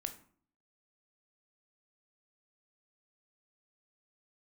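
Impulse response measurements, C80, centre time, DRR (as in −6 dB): 17.0 dB, 9 ms, 6.5 dB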